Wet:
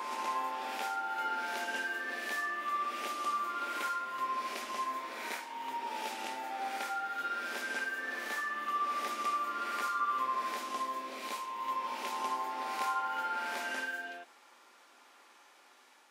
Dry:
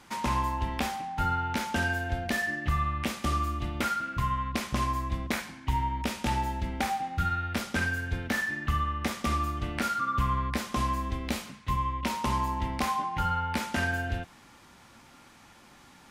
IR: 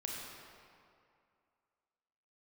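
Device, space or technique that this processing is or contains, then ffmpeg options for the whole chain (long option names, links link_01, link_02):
ghost voice: -filter_complex "[0:a]areverse[link_01];[1:a]atrim=start_sample=2205[link_02];[link_01][link_02]afir=irnorm=-1:irlink=0,areverse,highpass=frequency=380:width=0.5412,highpass=frequency=380:width=1.3066,volume=-5dB"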